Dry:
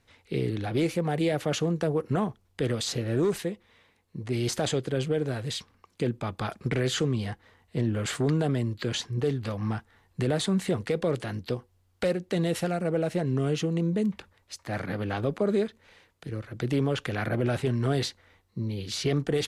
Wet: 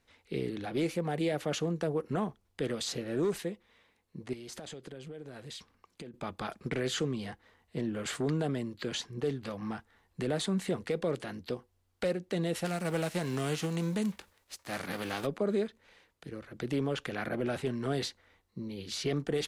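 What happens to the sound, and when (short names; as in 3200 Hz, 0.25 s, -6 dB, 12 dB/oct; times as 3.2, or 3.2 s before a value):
4.33–6.14 compressor 10:1, threshold -35 dBFS
12.64–15.25 spectral whitening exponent 0.6
whole clip: bell 110 Hz -13.5 dB 0.38 oct; gain -4.5 dB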